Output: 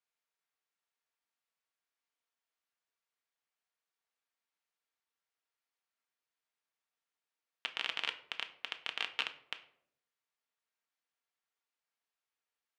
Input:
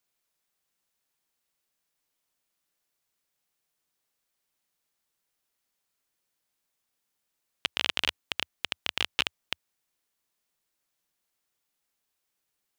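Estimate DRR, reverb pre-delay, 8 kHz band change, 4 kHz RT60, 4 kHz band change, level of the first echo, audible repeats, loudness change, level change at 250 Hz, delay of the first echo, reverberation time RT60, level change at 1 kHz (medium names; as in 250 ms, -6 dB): 6.0 dB, 4 ms, -14.5 dB, 0.35 s, -9.0 dB, no echo, no echo, -8.0 dB, -15.0 dB, no echo, 0.70 s, -6.0 dB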